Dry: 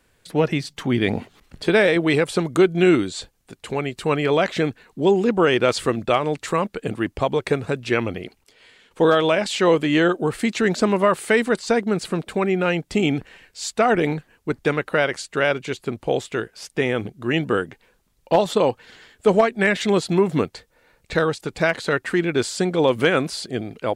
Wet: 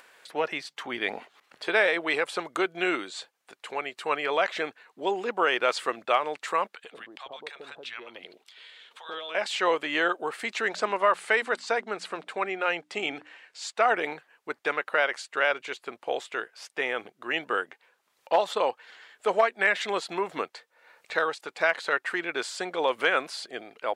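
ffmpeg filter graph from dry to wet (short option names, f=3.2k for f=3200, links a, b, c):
-filter_complex "[0:a]asettb=1/sr,asplit=3[a][b][c];[a]atrim=end=6.754[d];[b]atrim=start=6.75:end=9.35,asetpts=PTS-STARTPTS,afade=t=in:d=0.004:c=qsin,afade=t=out:st=2.596:d=0.004:c=qsin,equalizer=f=3.6k:t=o:w=0.54:g=10,acompressor=threshold=-32dB:ratio=3:attack=3.2:release=140:knee=1:detection=peak,acrossover=split=800[e][f];[e]adelay=90[g];[g][f]amix=inputs=2:normalize=0,atrim=end_sample=114660[h];[c]atrim=start=9.346[i];[d][h]acrossfade=d=0.004:c1=hsin:c2=qsin[j];[j][i]acrossfade=d=0.004:c1=qsin:c2=hsin,asettb=1/sr,asplit=3[k][l][m];[k]atrim=end=10.684[n];[l]atrim=start=10.68:end=13.8,asetpts=PTS-STARTPTS,afade=t=in:d=0.004:c=qsin,afade=t=out:st=3.116:d=0.004:c=qsin,lowpass=9.7k,bandreject=f=60:t=h:w=6,bandreject=f=120:t=h:w=6,bandreject=f=180:t=h:w=6,bandreject=f=240:t=h:w=6,bandreject=f=300:t=h:w=6[o];[m]atrim=start=13.796[p];[n][o]acrossfade=d=0.004:c1=hsin:c2=qsin[q];[q][p]acrossfade=d=0.004:c1=qsin:c2=hsin,highpass=780,highshelf=f=3.9k:g=-11,acompressor=mode=upward:threshold=-44dB:ratio=2.5"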